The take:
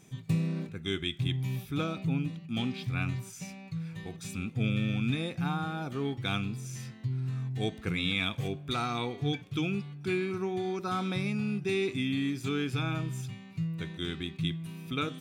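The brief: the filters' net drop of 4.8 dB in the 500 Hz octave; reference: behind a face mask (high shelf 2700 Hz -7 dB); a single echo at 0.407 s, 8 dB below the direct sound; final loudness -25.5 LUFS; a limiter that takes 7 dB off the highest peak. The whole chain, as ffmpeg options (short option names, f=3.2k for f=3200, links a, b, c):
-af "equalizer=f=500:t=o:g=-7,alimiter=limit=-24dB:level=0:latency=1,highshelf=f=2.7k:g=-7,aecho=1:1:407:0.398,volume=9.5dB"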